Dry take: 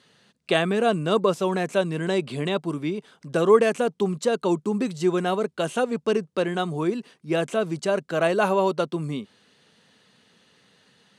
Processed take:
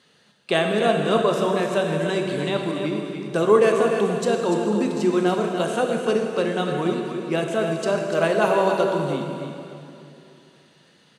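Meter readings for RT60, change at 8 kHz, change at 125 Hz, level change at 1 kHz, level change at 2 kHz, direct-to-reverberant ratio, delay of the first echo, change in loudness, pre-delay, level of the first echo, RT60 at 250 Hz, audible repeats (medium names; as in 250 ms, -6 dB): 2.8 s, +2.5 dB, +1.5 dB, +2.5 dB, +2.5 dB, 1.5 dB, 292 ms, +2.5 dB, 12 ms, -8.0 dB, 2.9 s, 1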